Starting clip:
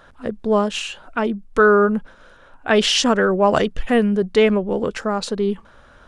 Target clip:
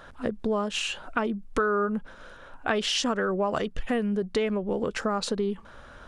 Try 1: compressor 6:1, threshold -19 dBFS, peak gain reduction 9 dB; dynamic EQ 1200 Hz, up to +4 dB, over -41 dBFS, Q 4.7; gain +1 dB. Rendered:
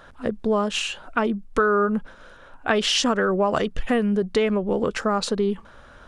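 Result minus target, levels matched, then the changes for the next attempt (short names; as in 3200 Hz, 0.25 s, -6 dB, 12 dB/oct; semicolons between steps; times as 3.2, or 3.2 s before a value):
compressor: peak gain reduction -5.5 dB
change: compressor 6:1, threshold -25.5 dBFS, peak gain reduction 14.5 dB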